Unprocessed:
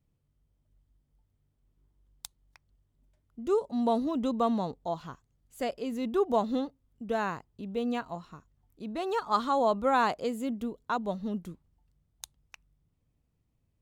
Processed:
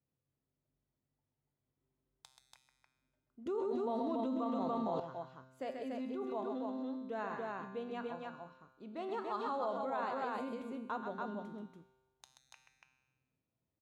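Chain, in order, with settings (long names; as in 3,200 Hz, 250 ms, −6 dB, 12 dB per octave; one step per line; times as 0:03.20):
spectral tilt −3.5 dB per octave
mains-hum notches 60/120/180/240 Hz
tuned comb filter 130 Hz, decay 1.2 s, harmonics all, mix 80%
loudspeakers that aren't time-aligned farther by 45 metres −7 dB, 98 metres −3 dB
brickwall limiter −31 dBFS, peak gain reduction 10.5 dB
meter weighting curve A
0:03.46–0:05.00: envelope flattener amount 100%
level +4 dB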